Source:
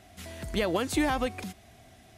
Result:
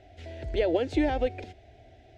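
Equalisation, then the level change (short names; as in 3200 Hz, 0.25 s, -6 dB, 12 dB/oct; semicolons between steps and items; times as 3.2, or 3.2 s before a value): air absorption 150 m; high shelf 3000 Hz -10.5 dB; fixed phaser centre 470 Hz, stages 4; +5.5 dB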